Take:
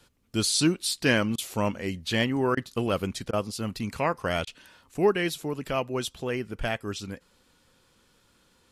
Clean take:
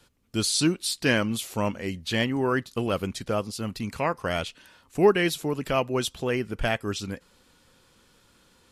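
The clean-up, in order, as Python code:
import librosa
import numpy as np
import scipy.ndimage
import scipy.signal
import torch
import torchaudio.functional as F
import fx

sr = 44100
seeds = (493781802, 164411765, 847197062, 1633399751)

y = fx.fix_interpolate(x, sr, at_s=(1.36, 2.55, 3.31, 4.45), length_ms=20.0)
y = fx.fix_level(y, sr, at_s=4.94, step_db=3.5)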